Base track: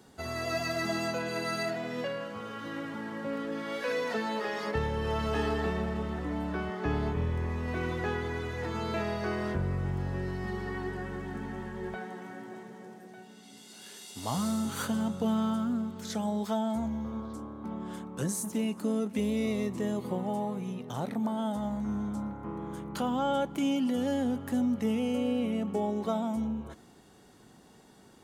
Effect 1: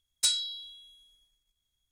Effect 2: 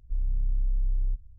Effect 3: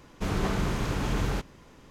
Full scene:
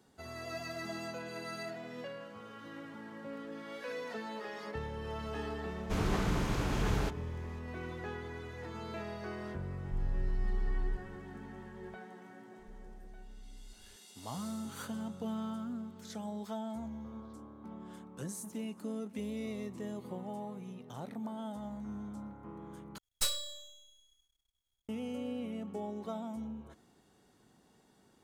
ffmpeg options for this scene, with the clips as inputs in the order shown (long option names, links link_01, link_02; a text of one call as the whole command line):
ffmpeg -i bed.wav -i cue0.wav -i cue1.wav -i cue2.wav -filter_complex "[2:a]asplit=2[link_01][link_02];[0:a]volume=-9.5dB[link_03];[link_02]acompressor=threshold=-38dB:ratio=6:attack=3.2:release=140:knee=1:detection=peak[link_04];[1:a]aeval=exprs='max(val(0),0)':channel_layout=same[link_05];[link_03]asplit=2[link_06][link_07];[link_06]atrim=end=22.984[link_08];[link_05]atrim=end=1.91,asetpts=PTS-STARTPTS,volume=-2dB[link_09];[link_07]atrim=start=24.886[link_10];[3:a]atrim=end=1.9,asetpts=PTS-STARTPTS,volume=-4dB,afade=type=in:duration=0.004:curve=hsin,afade=type=out:start_time=1.896:duration=0.004:curve=hsin,adelay=250929S[link_11];[link_01]atrim=end=1.38,asetpts=PTS-STARTPTS,volume=-7dB,afade=type=in:duration=0.004:curve=hsin,afade=type=out:start_time=1.376:duration=0.004:curve=hsin,adelay=9810[link_12];[link_04]atrim=end=1.38,asetpts=PTS-STARTPTS,volume=-11.5dB,afade=type=in:duration=0.004:curve=hsin,afade=type=out:start_time=1.376:duration=0.004:curve=hsin,adelay=12580[link_13];[link_08][link_09]acrossfade=duration=0.004:curve1=hsin:curve2=hsin[link_14];[link_14][link_10]acrossfade=duration=0.004:curve1=hsin:curve2=hsin[link_15];[link_15][link_11][link_12][link_13]amix=inputs=4:normalize=0" out.wav